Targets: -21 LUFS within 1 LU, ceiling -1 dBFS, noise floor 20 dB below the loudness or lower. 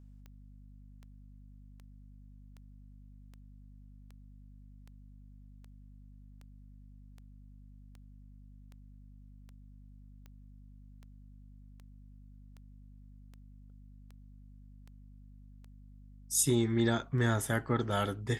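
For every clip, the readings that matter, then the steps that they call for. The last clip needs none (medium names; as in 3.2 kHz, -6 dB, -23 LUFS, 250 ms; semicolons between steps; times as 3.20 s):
clicks found 24; hum 50 Hz; highest harmonic 250 Hz; hum level -51 dBFS; loudness -30.5 LUFS; peak level -15.5 dBFS; loudness target -21.0 LUFS
-> de-click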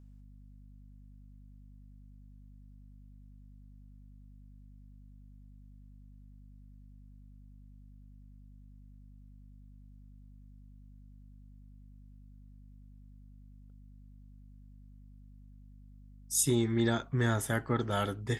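clicks found 0; hum 50 Hz; highest harmonic 250 Hz; hum level -51 dBFS
-> de-hum 50 Hz, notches 5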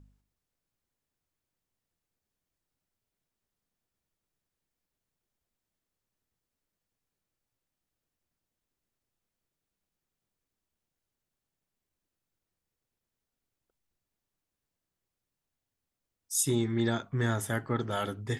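hum not found; loudness -30.5 LUFS; peak level -15.5 dBFS; loudness target -21.0 LUFS
-> trim +9.5 dB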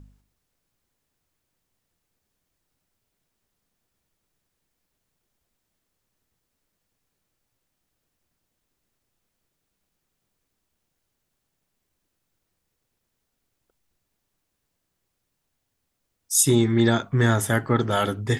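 loudness -21.0 LUFS; peak level -6.0 dBFS; noise floor -79 dBFS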